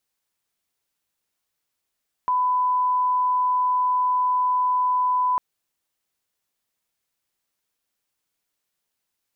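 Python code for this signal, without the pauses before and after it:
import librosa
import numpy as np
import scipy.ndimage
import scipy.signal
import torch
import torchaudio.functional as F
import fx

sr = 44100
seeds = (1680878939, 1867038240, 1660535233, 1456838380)

y = fx.lineup_tone(sr, length_s=3.1, level_db=-18.0)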